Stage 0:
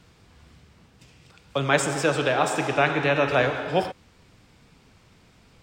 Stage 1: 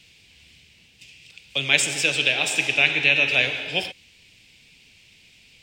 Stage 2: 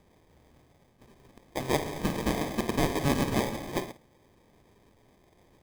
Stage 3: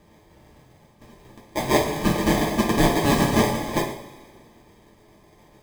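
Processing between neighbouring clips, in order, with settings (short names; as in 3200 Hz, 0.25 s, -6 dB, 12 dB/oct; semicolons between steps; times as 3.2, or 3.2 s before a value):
resonant high shelf 1800 Hz +12.5 dB, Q 3; gain -7 dB
running mean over 6 samples; sample-rate reducer 1400 Hz, jitter 0%; flutter echo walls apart 9.3 m, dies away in 0.23 s; gain -5.5 dB
reverb, pre-delay 3 ms, DRR -3.5 dB; gain +3.5 dB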